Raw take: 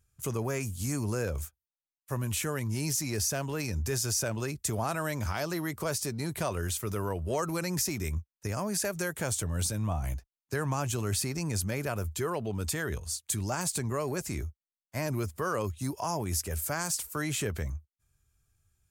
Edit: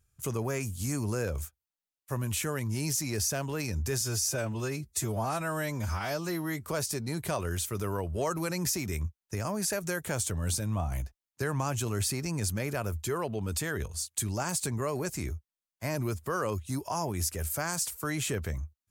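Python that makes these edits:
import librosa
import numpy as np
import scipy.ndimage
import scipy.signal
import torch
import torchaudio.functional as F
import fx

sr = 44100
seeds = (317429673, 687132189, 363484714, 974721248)

y = fx.edit(x, sr, fx.stretch_span(start_s=4.01, length_s=1.76, factor=1.5), tone=tone)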